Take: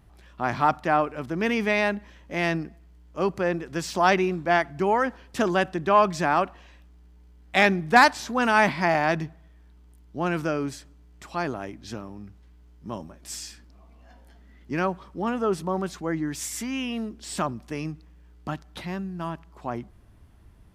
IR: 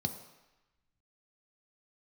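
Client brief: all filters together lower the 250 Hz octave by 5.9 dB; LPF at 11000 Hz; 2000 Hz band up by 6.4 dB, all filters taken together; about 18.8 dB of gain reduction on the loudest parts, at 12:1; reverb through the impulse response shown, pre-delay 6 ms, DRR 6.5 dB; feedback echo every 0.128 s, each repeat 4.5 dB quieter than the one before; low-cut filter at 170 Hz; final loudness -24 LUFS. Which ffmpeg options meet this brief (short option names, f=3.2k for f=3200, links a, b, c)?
-filter_complex "[0:a]highpass=170,lowpass=11k,equalizer=f=250:t=o:g=-7,equalizer=f=2k:t=o:g=8,acompressor=threshold=-26dB:ratio=12,aecho=1:1:128|256|384|512|640|768|896|1024|1152:0.596|0.357|0.214|0.129|0.0772|0.0463|0.0278|0.0167|0.01,asplit=2[a][b];[1:a]atrim=start_sample=2205,adelay=6[c];[b][c]afir=irnorm=-1:irlink=0,volume=-9dB[d];[a][d]amix=inputs=2:normalize=0,volume=6dB"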